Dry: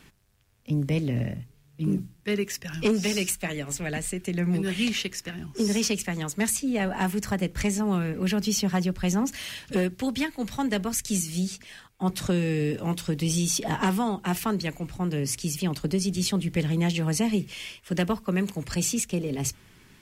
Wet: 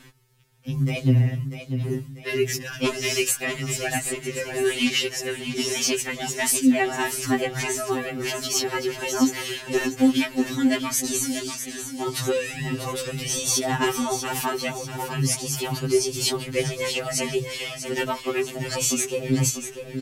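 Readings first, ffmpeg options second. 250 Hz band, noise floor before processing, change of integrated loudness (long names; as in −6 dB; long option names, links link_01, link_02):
0.0 dB, −58 dBFS, +3.0 dB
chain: -af "aecho=1:1:643|1286|1929|2572|3215:0.355|0.156|0.0687|0.0302|0.0133,afftfilt=real='re*2.45*eq(mod(b,6),0)':imag='im*2.45*eq(mod(b,6),0)':win_size=2048:overlap=0.75,volume=7dB"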